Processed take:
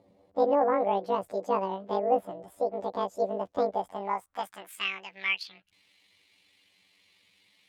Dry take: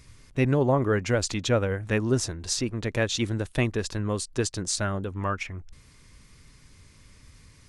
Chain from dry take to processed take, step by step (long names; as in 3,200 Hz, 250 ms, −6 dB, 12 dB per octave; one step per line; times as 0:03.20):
pitch shift by two crossfaded delay taps +11.5 semitones
band-pass filter sweep 570 Hz → 2,600 Hz, 0:03.71–0:04.90
level +5 dB